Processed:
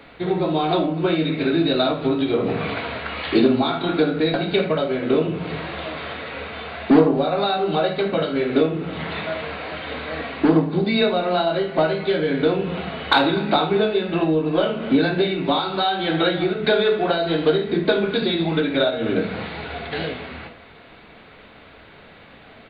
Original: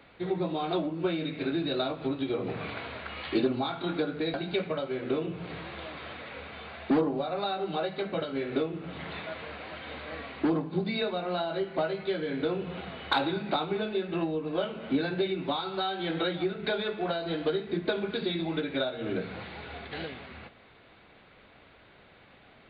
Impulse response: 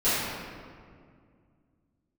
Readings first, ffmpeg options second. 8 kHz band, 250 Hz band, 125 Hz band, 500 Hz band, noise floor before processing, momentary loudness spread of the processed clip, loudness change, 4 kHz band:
no reading, +10.5 dB, +11.0 dB, +11.0 dB, -57 dBFS, 11 LU, +10.5 dB, +10.5 dB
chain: -filter_complex "[0:a]asplit=2[s0][s1];[s1]adelay=250.7,volume=0.0891,highshelf=f=4000:g=-5.64[s2];[s0][s2]amix=inputs=2:normalize=0,asplit=2[s3][s4];[1:a]atrim=start_sample=2205,atrim=end_sample=3969[s5];[s4][s5]afir=irnorm=-1:irlink=0,volume=0.141[s6];[s3][s6]amix=inputs=2:normalize=0,volume=2.66"

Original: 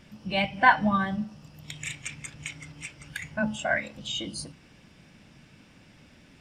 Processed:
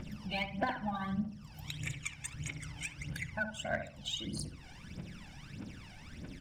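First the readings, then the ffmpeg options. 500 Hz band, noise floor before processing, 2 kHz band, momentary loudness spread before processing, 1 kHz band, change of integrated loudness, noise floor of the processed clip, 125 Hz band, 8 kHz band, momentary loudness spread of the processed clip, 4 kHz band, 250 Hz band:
-9.0 dB, -56 dBFS, -12.0 dB, 19 LU, -14.0 dB, -11.5 dB, -53 dBFS, -3.0 dB, -4.5 dB, 13 LU, -6.5 dB, -8.5 dB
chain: -filter_complex "[0:a]aphaser=in_gain=1:out_gain=1:delay=1.4:decay=0.78:speed=1.6:type=triangular,aeval=exprs='0.631*(cos(1*acos(clip(val(0)/0.631,-1,1)))-cos(1*PI/2))+0.0178*(cos(7*acos(clip(val(0)/0.631,-1,1)))-cos(7*PI/2))':c=same,acompressor=threshold=0.00794:ratio=2.5,asplit=2[s0][s1];[s1]adelay=68,lowpass=f=920:p=1,volume=0.501,asplit=2[s2][s3];[s3]adelay=68,lowpass=f=920:p=1,volume=0.4,asplit=2[s4][s5];[s5]adelay=68,lowpass=f=920:p=1,volume=0.4,asplit=2[s6][s7];[s7]adelay=68,lowpass=f=920:p=1,volume=0.4,asplit=2[s8][s9];[s9]adelay=68,lowpass=f=920:p=1,volume=0.4[s10];[s2][s4][s6][s8][s10]amix=inputs=5:normalize=0[s11];[s0][s11]amix=inputs=2:normalize=0,volume=1.19"

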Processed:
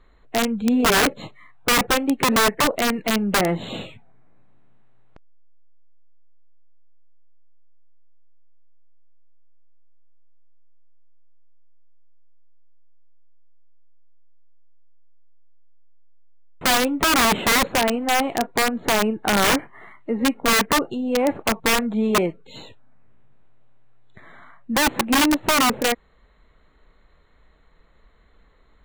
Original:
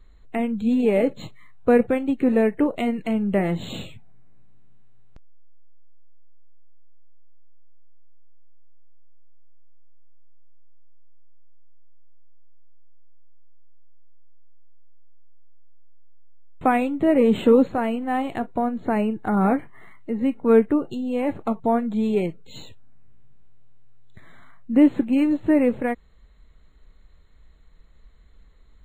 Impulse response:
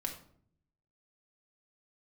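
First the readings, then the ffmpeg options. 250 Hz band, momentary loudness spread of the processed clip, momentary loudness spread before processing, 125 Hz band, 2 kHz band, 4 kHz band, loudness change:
-2.5 dB, 7 LU, 10 LU, 0.0 dB, +12.0 dB, +19.0 dB, +2.0 dB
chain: -filter_complex "[0:a]asplit=2[s0][s1];[s1]highpass=f=720:p=1,volume=6.31,asoftclip=type=tanh:threshold=0.562[s2];[s0][s2]amix=inputs=2:normalize=0,lowpass=f=1200:p=1,volume=0.501,aeval=exprs='(mod(4.22*val(0)+1,2)-1)/4.22':c=same"

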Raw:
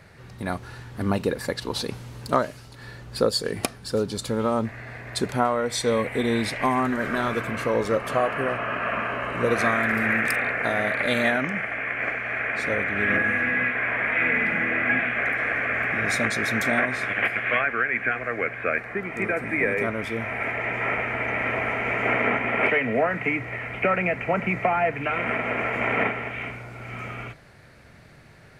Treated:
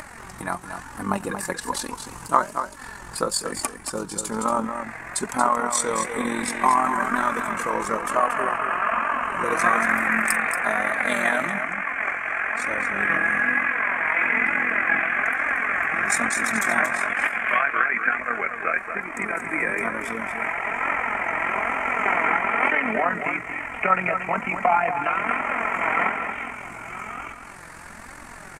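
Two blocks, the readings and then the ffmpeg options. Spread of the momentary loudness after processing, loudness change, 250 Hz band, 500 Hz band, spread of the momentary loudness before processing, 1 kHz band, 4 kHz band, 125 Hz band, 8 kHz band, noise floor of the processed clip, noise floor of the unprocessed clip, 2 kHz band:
12 LU, +1.5 dB, -3.0 dB, -3.5 dB, 10 LU, +5.5 dB, -3.5 dB, -8.5 dB, +8.5 dB, -41 dBFS, -48 dBFS, +1.5 dB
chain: -af "equalizer=f=125:t=o:w=1:g=-12,equalizer=f=500:t=o:w=1:g=-8,equalizer=f=1000:t=o:w=1:g=9,equalizer=f=4000:t=o:w=1:g=-10,equalizer=f=8000:t=o:w=1:g=12,acompressor=mode=upward:threshold=0.0282:ratio=2.5,tremolo=f=44:d=0.667,flanger=delay=3.2:depth=3.3:regen=37:speed=1.1:shape=triangular,aecho=1:1:231:0.398,volume=2.24"

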